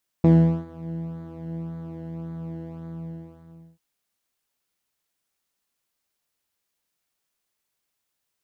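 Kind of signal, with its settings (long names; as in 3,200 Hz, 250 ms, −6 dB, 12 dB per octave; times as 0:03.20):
subtractive patch with pulse-width modulation E3, sub −14.5 dB, filter bandpass, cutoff 150 Hz, Q 1.7, filter envelope 0.5 octaves, attack 2.4 ms, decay 0.41 s, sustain −19 dB, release 1.00 s, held 2.54 s, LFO 1.8 Hz, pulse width 10%, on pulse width 4%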